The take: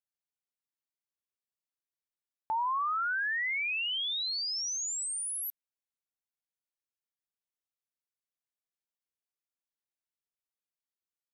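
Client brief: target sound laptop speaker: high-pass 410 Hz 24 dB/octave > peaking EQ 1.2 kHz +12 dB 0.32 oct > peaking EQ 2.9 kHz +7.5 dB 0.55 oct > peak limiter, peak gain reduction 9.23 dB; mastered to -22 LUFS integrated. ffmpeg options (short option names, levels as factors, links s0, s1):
-af "highpass=f=410:w=0.5412,highpass=f=410:w=1.3066,equalizer=f=1200:t=o:w=0.32:g=12,equalizer=f=2900:t=o:w=0.55:g=7.5,volume=2,alimiter=limit=0.119:level=0:latency=1"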